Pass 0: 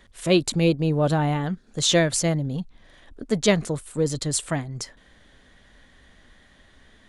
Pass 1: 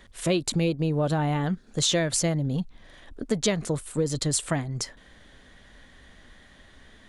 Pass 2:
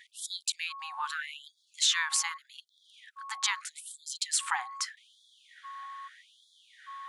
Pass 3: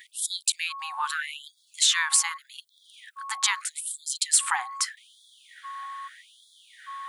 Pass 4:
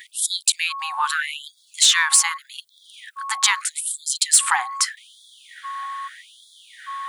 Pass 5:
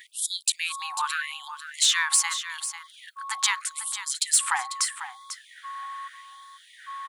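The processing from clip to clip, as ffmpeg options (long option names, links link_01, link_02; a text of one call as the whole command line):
ffmpeg -i in.wav -af "acompressor=threshold=-23dB:ratio=6,volume=2dB" out.wav
ffmpeg -i in.wav -af "aeval=exprs='val(0)+0.00562*sin(2*PI*1100*n/s)':channel_layout=same,highshelf=frequency=2400:gain=-9.5,afftfilt=real='re*gte(b*sr/1024,730*pow(3300/730,0.5+0.5*sin(2*PI*0.81*pts/sr)))':imag='im*gte(b*sr/1024,730*pow(3300/730,0.5+0.5*sin(2*PI*0.81*pts/sr)))':win_size=1024:overlap=0.75,volume=6.5dB" out.wav
ffmpeg -i in.wav -filter_complex "[0:a]asplit=2[link_01][link_02];[link_02]alimiter=limit=-17.5dB:level=0:latency=1:release=299,volume=-1dB[link_03];[link_01][link_03]amix=inputs=2:normalize=0,aexciter=amount=2.2:drive=5.5:freq=8100" out.wav
ffmpeg -i in.wav -af "acontrast=79" out.wav
ffmpeg -i in.wav -af "aecho=1:1:495:0.282,volume=-6dB" out.wav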